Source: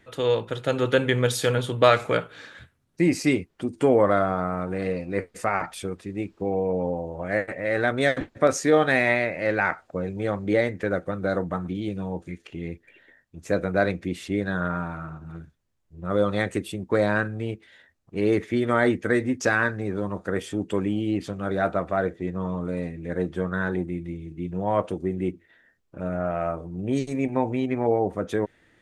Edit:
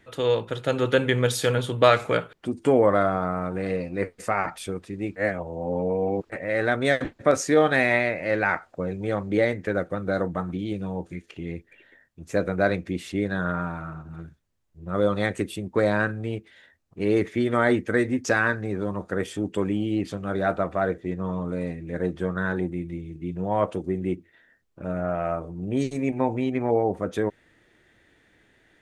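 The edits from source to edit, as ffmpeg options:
ffmpeg -i in.wav -filter_complex "[0:a]asplit=4[link_01][link_02][link_03][link_04];[link_01]atrim=end=2.332[link_05];[link_02]atrim=start=3.488:end=6.322[link_06];[link_03]atrim=start=6.318:end=7.462,asetpts=PTS-STARTPTS,areverse[link_07];[link_04]atrim=start=7.458[link_08];[link_05][link_06]acrossfade=duration=0.004:curve1=hsin:curve2=hsin[link_09];[link_09][link_07]acrossfade=duration=0.004:curve1=hsin:curve2=hsin[link_10];[link_10][link_08]acrossfade=duration=0.004:curve1=hsin:curve2=hsin" out.wav

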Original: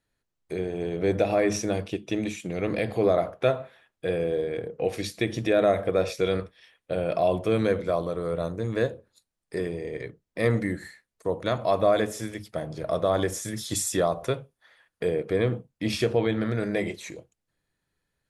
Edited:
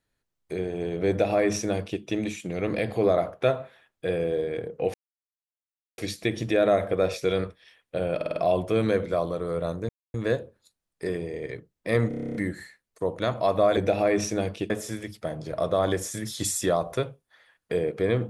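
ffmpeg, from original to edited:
ffmpeg -i in.wav -filter_complex "[0:a]asplit=18[link_01][link_02][link_03][link_04][link_05][link_06][link_07][link_08][link_09][link_10][link_11][link_12][link_13][link_14][link_15][link_16][link_17][link_18];[link_01]atrim=end=4.94,asetpts=PTS-STARTPTS,afade=type=out:start_time=4.936:duration=0.004:curve=hsin,apad=pad_dur=1.04[link_19];[link_02]atrim=start=4.94:end=7.162,asetpts=PTS-STARTPTS,afade=type=in:duration=0.004:curve=hsin[link_20];[link_03]atrim=start=7.108:end=7.162[link_21];[link_04]atrim=start=7.108:end=7.162[link_22];[link_05]atrim=start=7.108:end=7.162[link_23];[link_06]atrim=start=7.108:end=8.65,asetpts=PTS-STARTPTS,afade=type=out:start_time=1.538:duration=0.004:curve=hsin,apad=pad_dur=0.25[link_24];[link_07]atrim=start=8.65:end=10.622,asetpts=PTS-STARTPTS,afade=type=in:duration=0.004:curve=hsin[link_25];[link_08]atrim=start=10.588:end=10.622[link_26];[link_09]atrim=start=10.588:end=10.622[link_27];[link_10]atrim=start=10.588:end=10.622[link_28];[link_11]atrim=start=10.588:end=10.622[link_29];[link_12]atrim=start=10.588:end=10.622[link_30];[link_13]atrim=start=10.588:end=10.622[link_31];[link_14]atrim=start=10.588:end=10.622[link_32];[link_15]atrim=start=10.588:end=10.622[link_33];[link_16]atrim=start=10.588:end=12.012[link_34];[link_17]atrim=start=1.088:end=2.022[link_35];[link_18]atrim=start=12.008[link_36];[link_19][link_20]concat=n=2:v=0:a=1[link_37];[link_37][link_21]acrossfade=duration=0.004:curve1=hsin:curve2=hsin[link_38];[link_38][link_22]acrossfade=duration=0.004:curve1=hsin:curve2=hsin[link_39];[link_39][link_23]acrossfade=duration=0.004:curve1=hsin:curve2=hsin[link_40];[link_24][link_25]concat=n=2:v=0:a=1[link_41];[link_40][link_41]acrossfade=duration=0.004:curve1=hsin:curve2=hsin[link_42];[link_42][link_26]acrossfade=duration=0.004:curve1=hsin:curve2=hsin[link_43];[link_43][link_27]acrossfade=duration=0.004:curve1=hsin:curve2=hsin[link_44];[link_44][link_28]acrossfade=duration=0.004:curve1=hsin:curve2=hsin[link_45];[link_45][link_29]acrossfade=duration=0.004:curve1=hsin:curve2=hsin[link_46];[link_46][link_30]acrossfade=duration=0.004:curve1=hsin:curve2=hsin[link_47];[link_47][link_31]acrossfade=duration=0.004:curve1=hsin:curve2=hsin[link_48];[link_48][link_32]acrossfade=duration=0.004:curve1=hsin:curve2=hsin[link_49];[link_49][link_33]acrossfade=duration=0.004:curve1=hsin:curve2=hsin[link_50];[link_50][link_34]acrossfade=duration=0.004:curve1=hsin:curve2=hsin[link_51];[link_51][link_35]acrossfade=duration=0.004:curve1=hsin:curve2=hsin[link_52];[link_52][link_36]acrossfade=duration=0.004:curve1=hsin:curve2=hsin" out.wav

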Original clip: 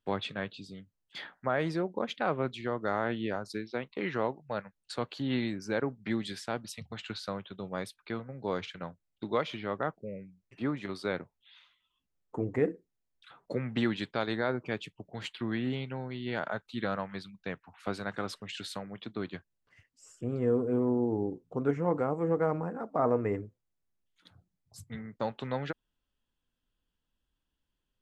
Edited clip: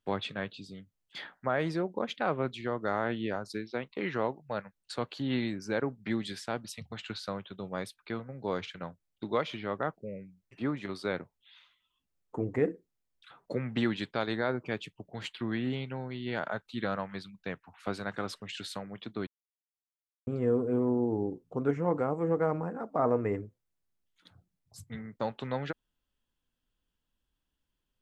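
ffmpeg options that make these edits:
ffmpeg -i in.wav -filter_complex "[0:a]asplit=3[link_01][link_02][link_03];[link_01]atrim=end=19.27,asetpts=PTS-STARTPTS,afade=type=out:start_time=19.266:duration=0.004:curve=hsin[link_04];[link_02]atrim=start=19.27:end=20.27,asetpts=PTS-STARTPTS,volume=0[link_05];[link_03]atrim=start=20.27,asetpts=PTS-STARTPTS,afade=type=in:duration=0.004:curve=hsin[link_06];[link_04][link_05][link_06]concat=n=3:v=0:a=1" out.wav

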